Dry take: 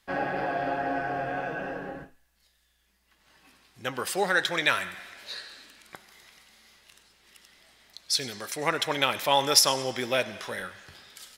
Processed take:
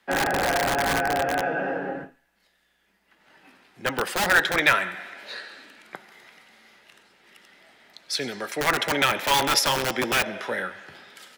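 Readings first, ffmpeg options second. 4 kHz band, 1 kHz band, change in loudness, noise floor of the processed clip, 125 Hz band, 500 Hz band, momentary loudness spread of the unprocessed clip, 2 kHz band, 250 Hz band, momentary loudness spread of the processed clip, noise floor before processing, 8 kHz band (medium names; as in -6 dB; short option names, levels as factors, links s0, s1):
+1.0 dB, +4.5 dB, +3.5 dB, -68 dBFS, +4.5 dB, +2.5 dB, 17 LU, +6.5 dB, +4.5 dB, 17 LU, -69 dBFS, -0.5 dB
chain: -filter_complex "[0:a]acrossover=split=150 2700:gain=0.126 1 0.251[s0][s1][s2];[s0][s1][s2]amix=inputs=3:normalize=0,bandreject=f=1100:w=11,acrossover=split=140|900[s3][s4][s5];[s4]aeval=exprs='(mod(22.4*val(0)+1,2)-1)/22.4':c=same[s6];[s3][s6][s5]amix=inputs=3:normalize=0,volume=2.37"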